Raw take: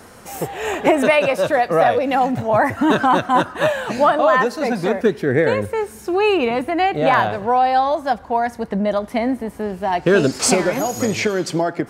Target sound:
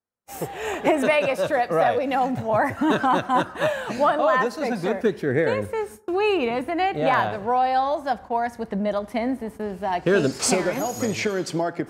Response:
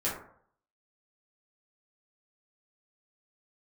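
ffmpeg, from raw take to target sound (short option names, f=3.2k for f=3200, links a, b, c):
-filter_complex "[0:a]agate=range=-45dB:threshold=-33dB:ratio=16:detection=peak,asplit=2[a][b];[1:a]atrim=start_sample=2205,adelay=45[c];[b][c]afir=irnorm=-1:irlink=0,volume=-29.5dB[d];[a][d]amix=inputs=2:normalize=0,volume=-5dB"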